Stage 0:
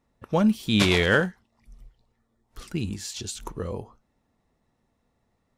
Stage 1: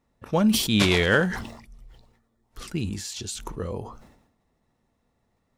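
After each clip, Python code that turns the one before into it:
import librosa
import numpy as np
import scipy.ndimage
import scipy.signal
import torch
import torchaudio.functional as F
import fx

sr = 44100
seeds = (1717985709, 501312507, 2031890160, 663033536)

y = fx.sustainer(x, sr, db_per_s=68.0)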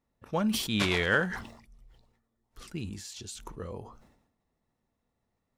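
y = fx.dynamic_eq(x, sr, hz=1400.0, q=0.72, threshold_db=-38.0, ratio=4.0, max_db=5)
y = F.gain(torch.from_numpy(y), -8.5).numpy()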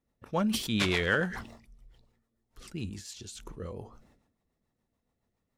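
y = fx.rotary(x, sr, hz=7.0)
y = F.gain(torch.from_numpy(y), 1.5).numpy()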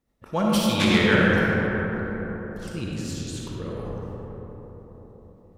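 y = fx.rev_freeverb(x, sr, rt60_s=4.7, hf_ratio=0.3, predelay_ms=15, drr_db=-4.5)
y = F.gain(torch.from_numpy(y), 3.5).numpy()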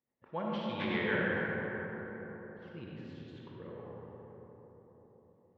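y = fx.cabinet(x, sr, low_hz=180.0, low_slope=12, high_hz=2700.0, hz=(200.0, 300.0, 450.0, 660.0, 1300.0, 2500.0), db=(-7, -7, -3, -5, -9, -7))
y = F.gain(torch.from_numpy(y), -8.0).numpy()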